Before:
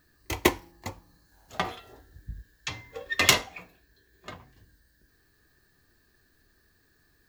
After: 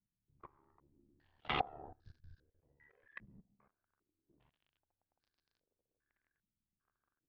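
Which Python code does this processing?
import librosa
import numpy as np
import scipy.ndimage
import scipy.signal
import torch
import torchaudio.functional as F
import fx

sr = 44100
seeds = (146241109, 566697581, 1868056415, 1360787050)

y = fx.doppler_pass(x, sr, speed_mps=22, closest_m=2.8, pass_at_s=1.67)
y = fx.hpss(y, sr, part='harmonic', gain_db=6)
y = fx.dynamic_eq(y, sr, hz=580.0, q=1.3, threshold_db=-51.0, ratio=4.0, max_db=-3)
y = fx.auto_swell(y, sr, attack_ms=139.0)
y = fx.level_steps(y, sr, step_db=19)
y = y * np.sin(2.0 * np.pi * 36.0 * np.arange(len(y)) / sr)
y = fx.dmg_crackle(y, sr, seeds[0], per_s=34.0, level_db=-65.0)
y = fx.air_absorb(y, sr, metres=140.0)
y = fx.filter_held_lowpass(y, sr, hz=2.5, low_hz=200.0, high_hz=4900.0)
y = y * librosa.db_to_amplitude(5.0)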